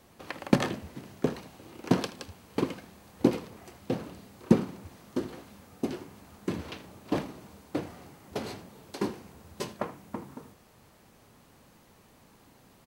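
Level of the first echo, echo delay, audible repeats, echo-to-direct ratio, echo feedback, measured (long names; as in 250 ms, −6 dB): −17.5 dB, 79 ms, 1, −17.5 dB, repeats not evenly spaced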